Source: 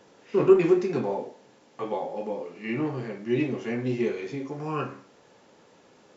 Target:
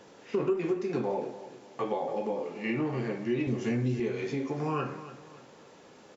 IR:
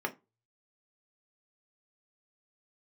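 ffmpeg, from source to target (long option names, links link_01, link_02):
-filter_complex "[0:a]asettb=1/sr,asplit=3[link_01][link_02][link_03];[link_01]atrim=end=3.474[link_04];[link_02]atrim=start=3.47:end=4,asetpts=PTS-STARTPTS,afade=type=in:duration=0.004:curve=qsin,afade=type=out:start_time=0.526:duration=0.004:curve=qsin,bass=frequency=250:gain=11,treble=frequency=4000:gain=9[link_05];[link_03]atrim=start=3.996[link_06];[link_04][link_05]acrossfade=duration=0.004:curve1=hsin:curve2=qsin[link_07];[link_07][link_06]acrossfade=duration=0.004:curve1=qsin:curve2=hsin,acompressor=threshold=-30dB:ratio=4,aecho=1:1:287|574|861|1148:0.188|0.0716|0.0272|0.0103,volume=2.5dB"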